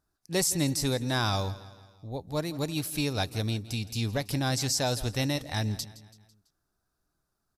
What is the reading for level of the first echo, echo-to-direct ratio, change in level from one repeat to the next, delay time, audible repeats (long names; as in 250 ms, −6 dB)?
−17.5 dB, −16.5 dB, −6.0 dB, 166 ms, 3